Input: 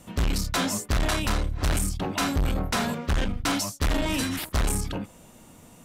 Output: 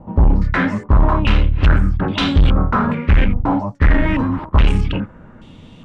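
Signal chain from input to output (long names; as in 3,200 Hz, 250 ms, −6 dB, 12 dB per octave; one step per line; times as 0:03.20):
low-shelf EQ 370 Hz +11 dB
notch filter 710 Hz, Q 12
low-pass on a step sequencer 2.4 Hz 840–3,400 Hz
level +2.5 dB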